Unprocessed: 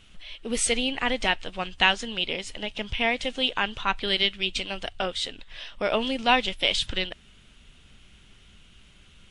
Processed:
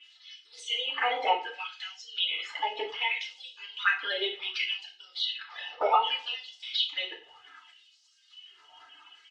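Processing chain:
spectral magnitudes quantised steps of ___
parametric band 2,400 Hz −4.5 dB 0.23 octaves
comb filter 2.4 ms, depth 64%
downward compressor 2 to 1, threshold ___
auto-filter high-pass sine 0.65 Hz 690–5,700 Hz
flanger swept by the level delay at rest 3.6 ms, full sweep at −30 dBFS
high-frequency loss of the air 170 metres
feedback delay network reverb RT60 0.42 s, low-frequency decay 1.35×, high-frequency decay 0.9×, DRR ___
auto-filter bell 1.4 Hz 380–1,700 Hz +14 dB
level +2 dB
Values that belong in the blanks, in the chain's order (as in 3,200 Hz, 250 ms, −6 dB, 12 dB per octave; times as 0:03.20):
30 dB, −38 dBFS, −2.5 dB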